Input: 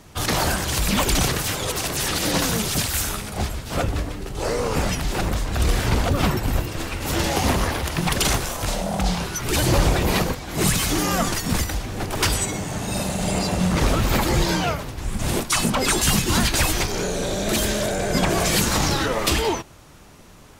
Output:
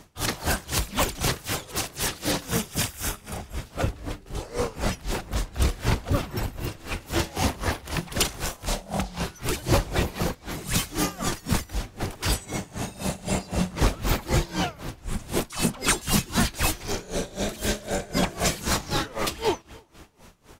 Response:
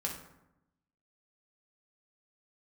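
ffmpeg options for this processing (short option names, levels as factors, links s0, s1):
-filter_complex "[0:a]asettb=1/sr,asplit=3[s0][s1][s2];[s0]atrim=end=2.454[s3];[s1]atrim=start=2.45:end=3.62,asetpts=PTS-STARTPTS,afade=t=in:d=0.004:c=qsin,afade=t=out:st=1.166:d=0.004:c=qsin,bandreject=f=4200:w=6.6[s4];[s2]atrim=start=3.616[s5];[s3][s4]acrossfade=d=0.004:c1=hsin:c2=qsin[s6];[s6][s5]acrossfade=d=0.004:c1=qsin:c2=hsin,asplit=2[s7][s8];[s8]adelay=337,lowpass=f=4100:p=1,volume=0.0794,asplit=2[s9][s10];[s10]adelay=337,lowpass=f=4100:p=1,volume=0.48,asplit=2[s11][s12];[s12]adelay=337,lowpass=f=4100:p=1,volume=0.48[s13];[s7][s9][s11][s13]amix=inputs=4:normalize=0,aeval=exprs='val(0)*pow(10,-21*(0.5-0.5*cos(2*PI*3.9*n/s))/20)':c=same"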